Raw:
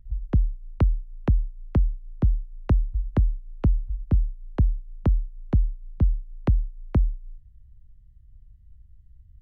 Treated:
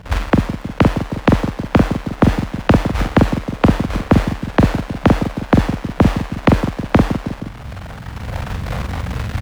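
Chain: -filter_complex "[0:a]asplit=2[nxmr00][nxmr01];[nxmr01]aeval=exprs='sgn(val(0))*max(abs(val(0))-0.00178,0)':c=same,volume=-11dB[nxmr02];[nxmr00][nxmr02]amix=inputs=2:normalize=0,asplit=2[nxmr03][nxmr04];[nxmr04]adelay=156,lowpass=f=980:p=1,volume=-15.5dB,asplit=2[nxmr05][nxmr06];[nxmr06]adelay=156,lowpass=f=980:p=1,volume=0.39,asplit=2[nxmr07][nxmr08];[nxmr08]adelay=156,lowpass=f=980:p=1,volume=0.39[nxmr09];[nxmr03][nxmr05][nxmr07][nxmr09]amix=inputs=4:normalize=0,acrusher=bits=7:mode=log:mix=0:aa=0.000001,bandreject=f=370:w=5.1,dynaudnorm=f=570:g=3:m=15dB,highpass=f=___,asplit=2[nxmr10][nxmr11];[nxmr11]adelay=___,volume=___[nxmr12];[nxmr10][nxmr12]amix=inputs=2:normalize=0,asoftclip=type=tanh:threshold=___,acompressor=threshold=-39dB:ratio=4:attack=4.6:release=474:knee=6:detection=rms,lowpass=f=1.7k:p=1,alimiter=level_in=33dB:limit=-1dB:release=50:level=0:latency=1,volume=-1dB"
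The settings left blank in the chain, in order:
220, 44, -4dB, -12dB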